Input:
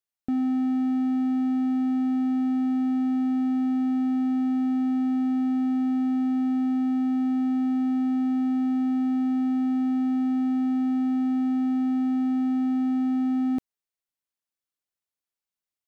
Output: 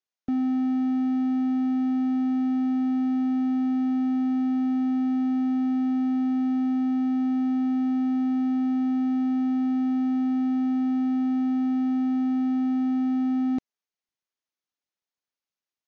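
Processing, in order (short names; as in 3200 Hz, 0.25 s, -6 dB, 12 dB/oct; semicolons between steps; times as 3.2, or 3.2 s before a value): AC-3 48 kbps 48000 Hz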